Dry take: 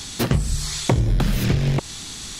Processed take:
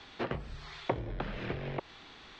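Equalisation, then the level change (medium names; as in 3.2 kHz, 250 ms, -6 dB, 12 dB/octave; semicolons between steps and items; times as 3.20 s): distance through air 170 m; three-band isolator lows -22 dB, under 400 Hz, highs -19 dB, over 3.5 kHz; bass shelf 340 Hz +9 dB; -8.0 dB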